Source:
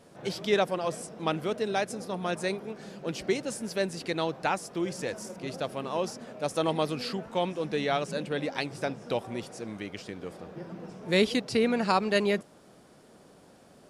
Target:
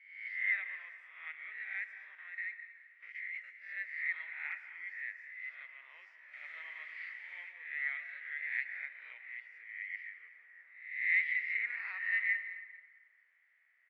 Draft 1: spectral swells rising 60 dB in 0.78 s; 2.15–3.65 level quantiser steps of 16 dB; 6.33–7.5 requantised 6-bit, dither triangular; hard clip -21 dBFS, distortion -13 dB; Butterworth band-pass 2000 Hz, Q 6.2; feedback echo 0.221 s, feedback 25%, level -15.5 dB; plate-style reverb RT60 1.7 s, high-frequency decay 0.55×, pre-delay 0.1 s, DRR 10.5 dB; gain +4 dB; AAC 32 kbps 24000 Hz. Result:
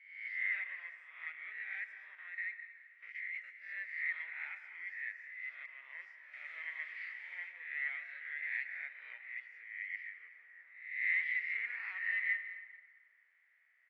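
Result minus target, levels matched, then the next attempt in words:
hard clip: distortion +18 dB
spectral swells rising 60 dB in 0.78 s; 2.15–3.65 level quantiser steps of 16 dB; 6.33–7.5 requantised 6-bit, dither triangular; hard clip -13 dBFS, distortion -30 dB; Butterworth band-pass 2000 Hz, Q 6.2; feedback echo 0.221 s, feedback 25%, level -15.5 dB; plate-style reverb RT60 1.7 s, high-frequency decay 0.55×, pre-delay 0.1 s, DRR 10.5 dB; gain +4 dB; AAC 32 kbps 24000 Hz

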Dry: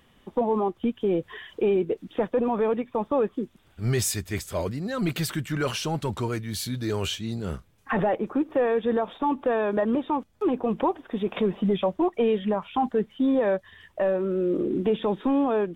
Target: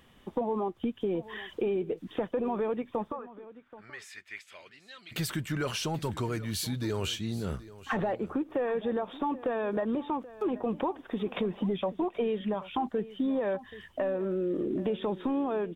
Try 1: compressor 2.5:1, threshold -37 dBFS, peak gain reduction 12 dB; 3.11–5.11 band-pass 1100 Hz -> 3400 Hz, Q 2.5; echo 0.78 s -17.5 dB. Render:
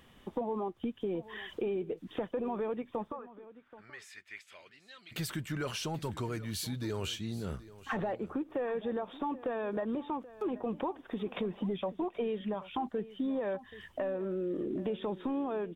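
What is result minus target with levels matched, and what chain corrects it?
compressor: peak gain reduction +4 dB
compressor 2.5:1, threshold -30 dBFS, peak gain reduction 7.5 dB; 3.11–5.11 band-pass 1100 Hz -> 3400 Hz, Q 2.5; echo 0.78 s -17.5 dB

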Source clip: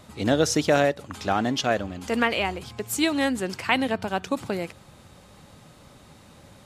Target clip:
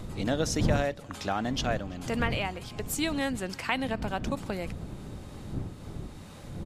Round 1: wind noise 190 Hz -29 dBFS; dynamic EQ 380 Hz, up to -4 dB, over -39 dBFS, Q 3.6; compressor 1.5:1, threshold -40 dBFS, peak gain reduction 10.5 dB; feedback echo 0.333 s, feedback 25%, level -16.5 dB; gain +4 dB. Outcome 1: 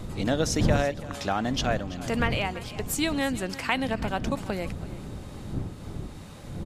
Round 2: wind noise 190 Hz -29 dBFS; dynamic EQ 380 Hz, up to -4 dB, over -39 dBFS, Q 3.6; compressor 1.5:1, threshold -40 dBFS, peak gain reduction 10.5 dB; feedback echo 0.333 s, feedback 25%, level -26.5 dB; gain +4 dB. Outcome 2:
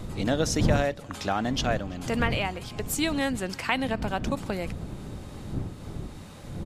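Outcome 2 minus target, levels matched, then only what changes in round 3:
compressor: peak gain reduction -3 dB
change: compressor 1.5:1, threshold -48.5 dBFS, peak gain reduction 13.5 dB

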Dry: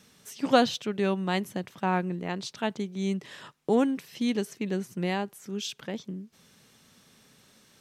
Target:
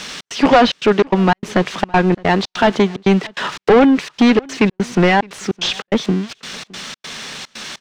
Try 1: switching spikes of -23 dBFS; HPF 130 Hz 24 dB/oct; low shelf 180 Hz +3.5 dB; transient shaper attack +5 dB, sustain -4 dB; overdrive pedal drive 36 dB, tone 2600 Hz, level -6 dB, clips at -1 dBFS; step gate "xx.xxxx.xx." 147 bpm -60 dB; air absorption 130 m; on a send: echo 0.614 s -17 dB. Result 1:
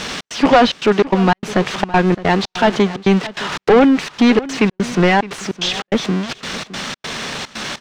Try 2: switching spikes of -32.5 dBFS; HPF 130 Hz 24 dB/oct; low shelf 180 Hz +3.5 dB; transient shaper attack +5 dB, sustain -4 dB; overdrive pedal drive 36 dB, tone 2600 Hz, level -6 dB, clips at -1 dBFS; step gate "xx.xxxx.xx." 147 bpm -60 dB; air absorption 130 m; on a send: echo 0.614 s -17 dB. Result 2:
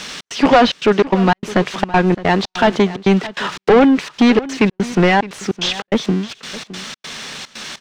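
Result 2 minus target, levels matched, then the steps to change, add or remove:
echo-to-direct +8 dB
change: echo 0.614 s -25 dB

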